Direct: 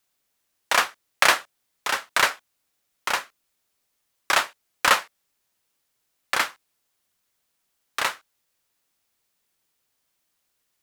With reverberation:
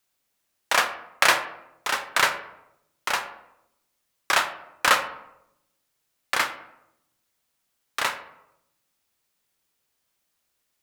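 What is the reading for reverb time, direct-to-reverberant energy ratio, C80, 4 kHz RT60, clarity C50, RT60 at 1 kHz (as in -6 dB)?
0.85 s, 8.0 dB, 14.0 dB, 0.50 s, 11.5 dB, 0.80 s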